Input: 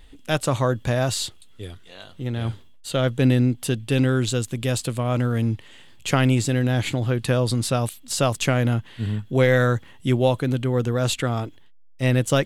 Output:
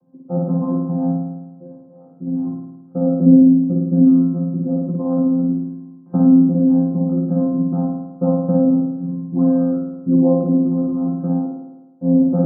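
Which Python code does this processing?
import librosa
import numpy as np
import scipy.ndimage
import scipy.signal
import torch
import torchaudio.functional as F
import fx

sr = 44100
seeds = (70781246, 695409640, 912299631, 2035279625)

y = fx.chord_vocoder(x, sr, chord='bare fifth', root=53)
y = scipy.signal.sosfilt(scipy.signal.butter(8, 1200.0, 'lowpass', fs=sr, output='sos'), y)
y = fx.tilt_eq(y, sr, slope=-3.5)
y = fx.rev_spring(y, sr, rt60_s=1.1, pass_ms=(53,), chirp_ms=30, drr_db=-1.5)
y = y * librosa.db_to_amplitude(-5.0)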